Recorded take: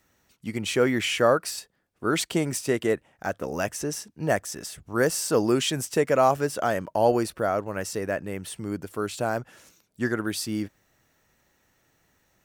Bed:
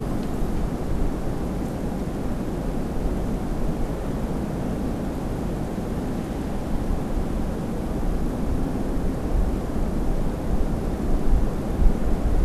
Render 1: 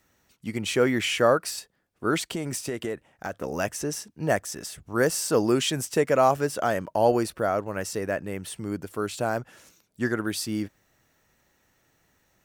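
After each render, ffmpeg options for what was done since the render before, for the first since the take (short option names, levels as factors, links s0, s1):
-filter_complex "[0:a]asettb=1/sr,asplit=3[s0][s1][s2];[s0]atrim=end=2.174[s3];[s1]atrim=start=2.17:end=3.44,asetpts=PTS-STARTPTS,afade=t=in:d=0.004:c=qsin,afade=t=out:st=1.266:d=0.004:c=qsin,acompressor=threshold=0.0501:ratio=6:attack=3.2:release=140:knee=1:detection=peak[s4];[s2]atrim=start=3.436[s5];[s3][s4]acrossfade=d=0.004:c1=hsin:c2=qsin[s6];[s6][s5]acrossfade=d=0.004:c1=qsin:c2=hsin"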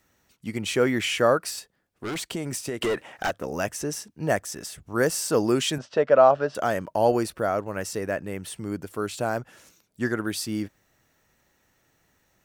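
-filter_complex "[0:a]asettb=1/sr,asplit=3[s0][s1][s2];[s0]atrim=end=1.544[s3];[s1]atrim=start=1.54:end=2.25,asetpts=PTS-STARTPTS,afade=t=in:d=0.004:c=qsin,afade=t=out:st=0.706:d=0.004:c=qsin,asoftclip=type=hard:threshold=0.0376[s4];[s2]atrim=start=2.246[s5];[s3][s4]acrossfade=d=0.004:c1=hsin:c2=qsin[s6];[s6][s5]acrossfade=d=0.004:c1=qsin:c2=hsin,asettb=1/sr,asplit=3[s7][s8][s9];[s7]atrim=end=2.814[s10];[s8]atrim=start=2.81:end=3.31,asetpts=PTS-STARTPTS,afade=t=in:d=0.004:c=qsin,afade=t=out:st=0.496:d=0.004:c=qsin,asplit=2[s11][s12];[s12]highpass=f=720:p=1,volume=17.8,asoftclip=type=tanh:threshold=0.141[s13];[s11][s13]amix=inputs=2:normalize=0,lowpass=f=5100:p=1,volume=0.501[s14];[s9]atrim=start=3.306[s15];[s10][s14]acrossfade=d=0.004:c1=hsin:c2=qsin[s16];[s16][s15]acrossfade=d=0.004:c1=qsin:c2=hsin,asettb=1/sr,asplit=3[s17][s18][s19];[s17]atrim=end=5.784[s20];[s18]atrim=start=5.78:end=6.55,asetpts=PTS-STARTPTS,afade=t=in:d=0.004:c=qsin,afade=t=out:st=0.766:d=0.004:c=qsin,highpass=110,equalizer=f=110:t=q:w=4:g=-7,equalizer=f=180:t=q:w=4:g=-8,equalizer=f=330:t=q:w=4:g=-7,equalizer=f=600:t=q:w=4:g=9,equalizer=f=1400:t=q:w=4:g=4,equalizer=f=2200:t=q:w=4:g=-8,lowpass=f=4100:w=0.5412,lowpass=f=4100:w=1.3066[s21];[s19]atrim=start=6.546[s22];[s20][s21]acrossfade=d=0.004:c1=hsin:c2=qsin[s23];[s23][s22]acrossfade=d=0.004:c1=qsin:c2=hsin"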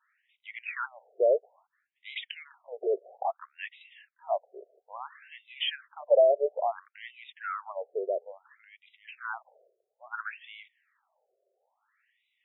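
-af "asoftclip=type=tanh:threshold=0.224,afftfilt=real='re*between(b*sr/1024,490*pow(2800/490,0.5+0.5*sin(2*PI*0.59*pts/sr))/1.41,490*pow(2800/490,0.5+0.5*sin(2*PI*0.59*pts/sr))*1.41)':imag='im*between(b*sr/1024,490*pow(2800/490,0.5+0.5*sin(2*PI*0.59*pts/sr))/1.41,490*pow(2800/490,0.5+0.5*sin(2*PI*0.59*pts/sr))*1.41)':win_size=1024:overlap=0.75"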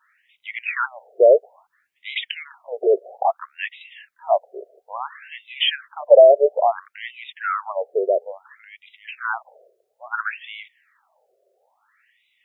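-af "volume=3.55,alimiter=limit=0.794:level=0:latency=1"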